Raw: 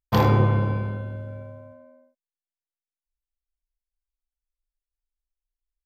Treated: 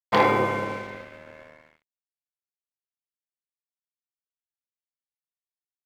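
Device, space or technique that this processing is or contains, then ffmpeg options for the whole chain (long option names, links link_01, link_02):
pocket radio on a weak battery: -af "highpass=350,lowpass=3900,aeval=exprs='sgn(val(0))*max(abs(val(0))-0.00631,0)':channel_layout=same,equalizer=frequency=2100:width_type=o:width=0.25:gain=10,volume=4dB"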